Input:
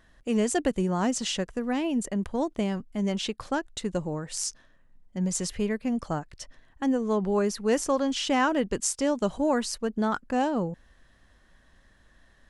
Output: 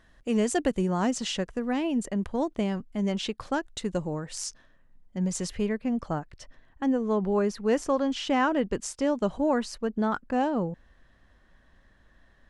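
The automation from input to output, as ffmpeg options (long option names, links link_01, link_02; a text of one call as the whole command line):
ffmpeg -i in.wav -af "asetnsamples=nb_out_samples=441:pad=0,asendcmd='1.11 lowpass f 5700;3.52 lowpass f 9800;4.2 lowpass f 5300;5.7 lowpass f 2800',lowpass=frequency=9200:poles=1" out.wav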